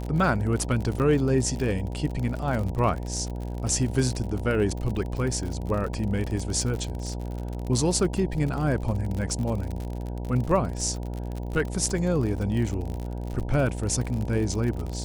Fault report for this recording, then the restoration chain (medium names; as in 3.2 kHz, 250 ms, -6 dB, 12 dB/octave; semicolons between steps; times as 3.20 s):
buzz 60 Hz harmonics 16 -32 dBFS
crackle 53 per s -30 dBFS
0.99–1.00 s: dropout 8.8 ms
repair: de-click; de-hum 60 Hz, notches 16; interpolate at 0.99 s, 8.8 ms